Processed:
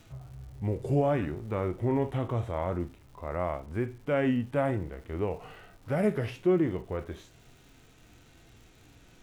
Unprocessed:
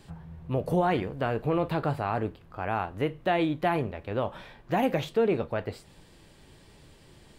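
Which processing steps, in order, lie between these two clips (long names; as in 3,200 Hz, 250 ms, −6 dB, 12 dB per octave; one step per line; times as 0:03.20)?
speed change −20%
surface crackle 290 per second −47 dBFS
harmonic and percussive parts rebalanced percussive −7 dB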